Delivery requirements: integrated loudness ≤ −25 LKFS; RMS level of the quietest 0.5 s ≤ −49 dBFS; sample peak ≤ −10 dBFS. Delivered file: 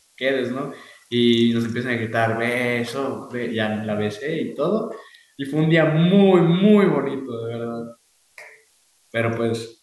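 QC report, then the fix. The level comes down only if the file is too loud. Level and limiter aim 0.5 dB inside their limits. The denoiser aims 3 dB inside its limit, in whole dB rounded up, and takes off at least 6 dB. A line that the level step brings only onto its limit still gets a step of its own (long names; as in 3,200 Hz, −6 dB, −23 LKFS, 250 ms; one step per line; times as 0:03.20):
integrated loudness −20.5 LKFS: out of spec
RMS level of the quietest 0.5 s −61 dBFS: in spec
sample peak −5.0 dBFS: out of spec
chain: level −5 dB
brickwall limiter −10.5 dBFS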